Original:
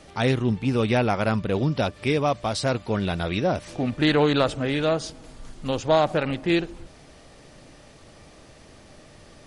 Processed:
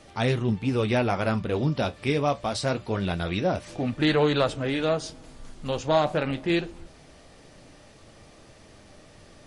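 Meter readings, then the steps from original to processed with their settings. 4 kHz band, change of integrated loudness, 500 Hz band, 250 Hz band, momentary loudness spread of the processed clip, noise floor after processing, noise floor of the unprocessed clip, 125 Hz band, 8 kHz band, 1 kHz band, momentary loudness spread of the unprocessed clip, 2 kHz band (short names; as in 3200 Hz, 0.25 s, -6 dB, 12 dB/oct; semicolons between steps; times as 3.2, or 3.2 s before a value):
-2.0 dB, -2.0 dB, -2.0 dB, -2.5 dB, 7 LU, -52 dBFS, -50 dBFS, -2.0 dB, -2.0 dB, -2.0 dB, 7 LU, -2.0 dB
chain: flange 0.24 Hz, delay 8.5 ms, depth 6 ms, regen -58%; gain +2 dB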